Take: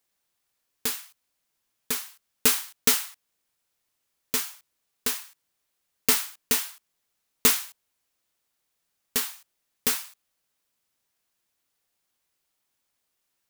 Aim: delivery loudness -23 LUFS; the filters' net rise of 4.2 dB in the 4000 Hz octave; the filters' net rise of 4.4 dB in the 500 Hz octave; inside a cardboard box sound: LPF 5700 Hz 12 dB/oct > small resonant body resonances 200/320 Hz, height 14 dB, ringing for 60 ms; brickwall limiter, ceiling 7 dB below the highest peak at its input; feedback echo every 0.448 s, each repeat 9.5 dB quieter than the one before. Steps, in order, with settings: bell 500 Hz +5 dB; bell 4000 Hz +6.5 dB; limiter -9 dBFS; LPF 5700 Hz 12 dB/oct; feedback echo 0.448 s, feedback 33%, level -9.5 dB; small resonant body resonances 200/320 Hz, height 14 dB, ringing for 60 ms; gain +8 dB

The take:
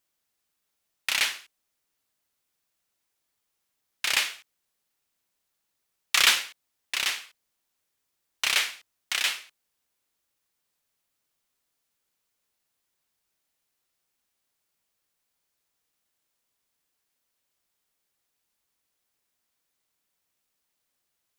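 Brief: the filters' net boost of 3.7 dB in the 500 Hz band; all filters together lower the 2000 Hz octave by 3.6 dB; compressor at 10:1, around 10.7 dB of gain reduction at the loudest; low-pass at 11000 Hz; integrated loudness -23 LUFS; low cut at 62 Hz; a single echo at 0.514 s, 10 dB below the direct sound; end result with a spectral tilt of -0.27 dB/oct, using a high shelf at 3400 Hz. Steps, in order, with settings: HPF 62 Hz; LPF 11000 Hz; bell 500 Hz +5 dB; bell 2000 Hz -3.5 dB; high shelf 3400 Hz -3.5 dB; compressor 10:1, threshold -29 dBFS; echo 0.514 s -10 dB; gain +13.5 dB

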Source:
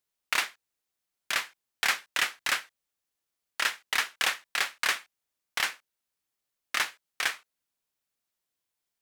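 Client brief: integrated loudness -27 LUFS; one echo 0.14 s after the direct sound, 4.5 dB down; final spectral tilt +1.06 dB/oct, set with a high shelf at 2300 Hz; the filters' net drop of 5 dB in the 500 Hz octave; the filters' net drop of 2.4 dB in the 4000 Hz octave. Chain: bell 500 Hz -7 dB; high shelf 2300 Hz +5.5 dB; bell 4000 Hz -8.5 dB; echo 0.14 s -4.5 dB; gain +1.5 dB

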